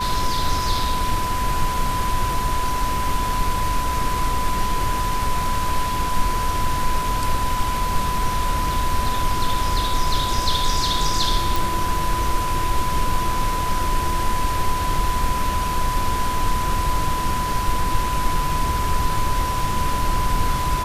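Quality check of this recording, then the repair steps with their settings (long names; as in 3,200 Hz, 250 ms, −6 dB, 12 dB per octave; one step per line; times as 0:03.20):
whistle 1,000 Hz −23 dBFS
0:11.56: click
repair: click removal
notch filter 1,000 Hz, Q 30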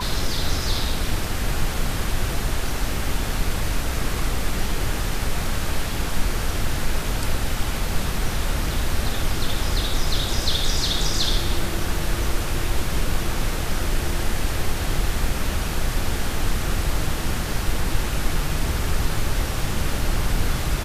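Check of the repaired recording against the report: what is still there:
none of them is left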